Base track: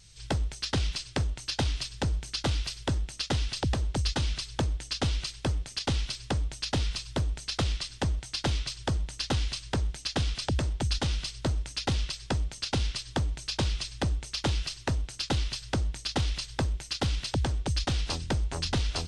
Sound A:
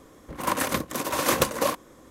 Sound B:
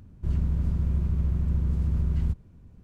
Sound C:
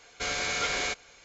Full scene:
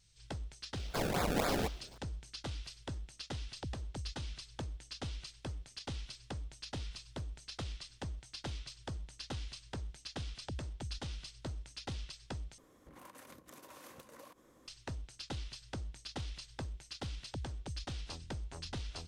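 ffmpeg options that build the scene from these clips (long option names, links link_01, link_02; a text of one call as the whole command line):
ffmpeg -i bed.wav -i cue0.wav -i cue1.wav -i cue2.wav -filter_complex "[0:a]volume=-13.5dB[link_01];[3:a]acrusher=samples=30:mix=1:aa=0.000001:lfo=1:lforange=30:lforate=3.8[link_02];[1:a]acompressor=threshold=-39dB:ratio=6:attack=3.2:release=140:knee=1:detection=peak[link_03];[link_01]asplit=2[link_04][link_05];[link_04]atrim=end=12.584[link_06];[link_03]atrim=end=2.1,asetpts=PTS-STARTPTS,volume=-13dB[link_07];[link_05]atrim=start=14.676[link_08];[link_02]atrim=end=1.24,asetpts=PTS-STARTPTS,volume=-3dB,afade=type=in:duration=0.004:curve=hsin,afade=type=out:start_time=1.236:duration=0.004:curve=hsin,adelay=740[link_09];[link_06][link_07]acrossfade=duration=0.004:curve1=hsin:curve2=hsin[link_10];[link_10][link_08]acrossfade=duration=0.004:curve1=hsin:curve2=hsin[link_11];[link_11][link_09]amix=inputs=2:normalize=0" out.wav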